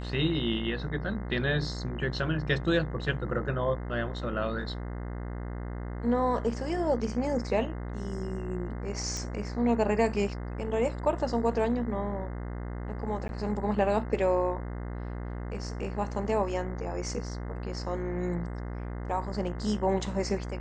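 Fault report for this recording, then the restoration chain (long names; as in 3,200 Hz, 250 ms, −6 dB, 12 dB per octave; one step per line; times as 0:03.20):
mains buzz 60 Hz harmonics 35 −36 dBFS
0:09.17: click −22 dBFS
0:13.28–0:13.29: drop-out 11 ms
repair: click removal
hum removal 60 Hz, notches 35
repair the gap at 0:13.28, 11 ms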